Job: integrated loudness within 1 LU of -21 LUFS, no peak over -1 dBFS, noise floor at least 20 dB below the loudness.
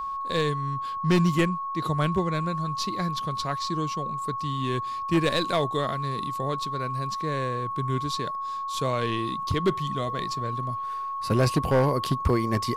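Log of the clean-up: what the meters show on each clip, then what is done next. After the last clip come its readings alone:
clipped 0.6%; flat tops at -15.5 dBFS; steady tone 1100 Hz; tone level -29 dBFS; loudness -27.0 LUFS; peak -15.5 dBFS; loudness target -21.0 LUFS
-> clip repair -15.5 dBFS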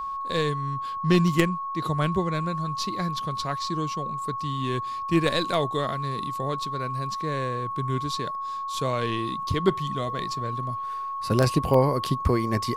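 clipped 0.0%; steady tone 1100 Hz; tone level -29 dBFS
-> notch 1100 Hz, Q 30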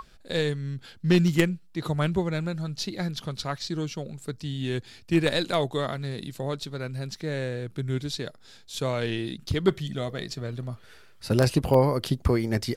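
steady tone none; loudness -28.0 LUFS; peak -6.0 dBFS; loudness target -21.0 LUFS
-> gain +7 dB; limiter -1 dBFS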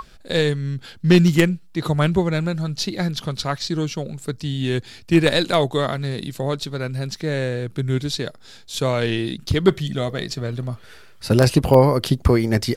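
loudness -21.0 LUFS; peak -1.0 dBFS; noise floor -45 dBFS

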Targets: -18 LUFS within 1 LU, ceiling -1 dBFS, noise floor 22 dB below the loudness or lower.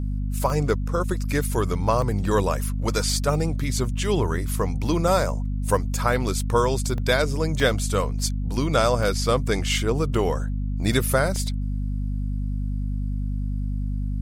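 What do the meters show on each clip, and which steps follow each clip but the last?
dropouts 7; longest dropout 1.1 ms; hum 50 Hz; harmonics up to 250 Hz; hum level -23 dBFS; loudness -24.5 LUFS; peak -6.5 dBFS; loudness target -18.0 LUFS
-> interpolate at 0.5/2.02/5.08/6.98/7.6/9.03/11.36, 1.1 ms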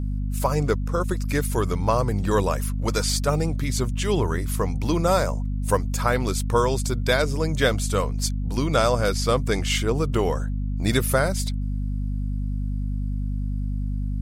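dropouts 0; hum 50 Hz; harmonics up to 250 Hz; hum level -23 dBFS
-> notches 50/100/150/200/250 Hz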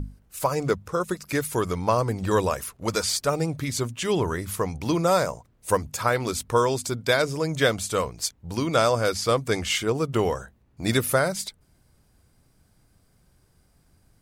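hum none; loudness -25.0 LUFS; peak -6.5 dBFS; loudness target -18.0 LUFS
-> gain +7 dB; limiter -1 dBFS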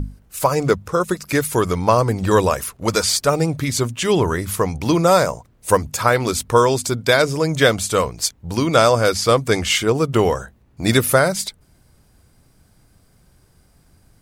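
loudness -18.0 LUFS; peak -1.0 dBFS; noise floor -56 dBFS

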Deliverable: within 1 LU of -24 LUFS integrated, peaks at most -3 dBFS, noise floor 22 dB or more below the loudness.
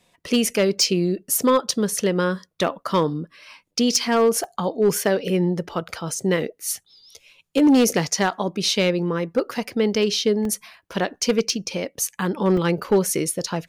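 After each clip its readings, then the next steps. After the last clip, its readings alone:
clipped 0.5%; flat tops at -11.0 dBFS; dropouts 5; longest dropout 2.2 ms; loudness -22.0 LUFS; peak -11.0 dBFS; loudness target -24.0 LUFS
-> clip repair -11 dBFS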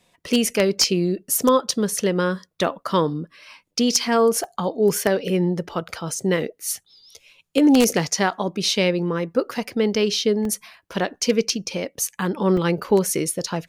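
clipped 0.0%; dropouts 5; longest dropout 2.2 ms
-> interpolate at 1.35/4.44/10.45/11.06/12.57, 2.2 ms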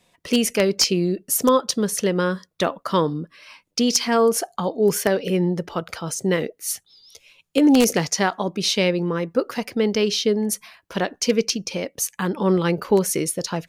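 dropouts 0; loudness -21.5 LUFS; peak -2.0 dBFS; loudness target -24.0 LUFS
-> gain -2.5 dB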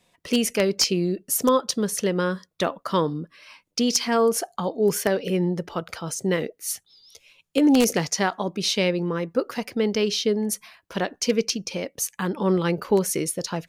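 loudness -24.0 LUFS; peak -4.5 dBFS; noise floor -71 dBFS

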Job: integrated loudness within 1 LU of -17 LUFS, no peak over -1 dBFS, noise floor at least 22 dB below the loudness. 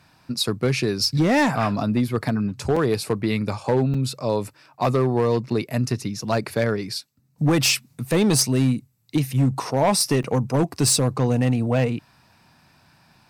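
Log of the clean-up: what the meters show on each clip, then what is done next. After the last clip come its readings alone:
clipped 1.5%; flat tops at -13.0 dBFS; dropouts 3; longest dropout 4.6 ms; loudness -22.0 LUFS; peak -13.0 dBFS; loudness target -17.0 LUFS
-> clip repair -13 dBFS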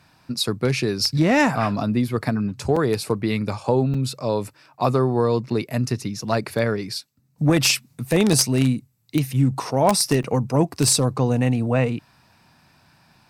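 clipped 0.0%; dropouts 3; longest dropout 4.6 ms
-> interpolate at 2.76/3.94/10.23, 4.6 ms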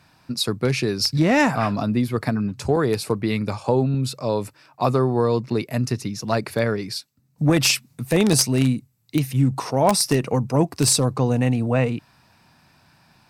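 dropouts 0; loudness -21.5 LUFS; peak -4.0 dBFS; loudness target -17.0 LUFS
-> gain +4.5 dB; limiter -1 dBFS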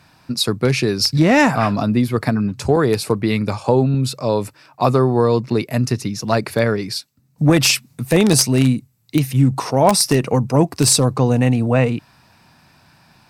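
loudness -17.0 LUFS; peak -1.0 dBFS; noise floor -54 dBFS

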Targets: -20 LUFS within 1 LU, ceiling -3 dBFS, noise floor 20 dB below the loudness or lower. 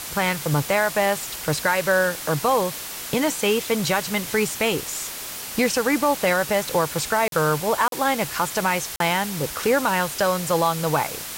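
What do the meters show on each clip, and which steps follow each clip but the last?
dropouts 3; longest dropout 42 ms; noise floor -34 dBFS; noise floor target -42 dBFS; loudness -22.0 LUFS; peak -8.0 dBFS; loudness target -20.0 LUFS
-> interpolate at 7.28/7.88/8.96, 42 ms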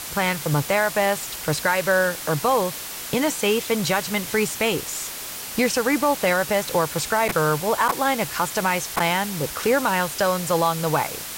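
dropouts 0; noise floor -34 dBFS; noise floor target -42 dBFS
-> denoiser 8 dB, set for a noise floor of -34 dBFS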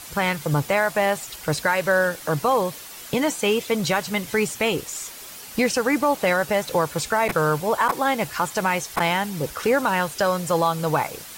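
noise floor -40 dBFS; noise floor target -43 dBFS
-> denoiser 6 dB, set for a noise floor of -40 dBFS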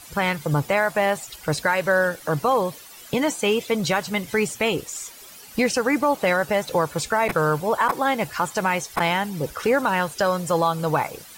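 noise floor -44 dBFS; loudness -22.5 LUFS; peak -8.0 dBFS; loudness target -20.0 LUFS
-> gain +2.5 dB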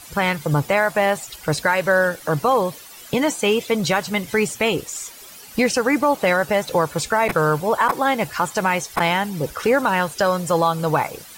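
loudness -20.0 LUFS; peak -5.5 dBFS; noise floor -41 dBFS

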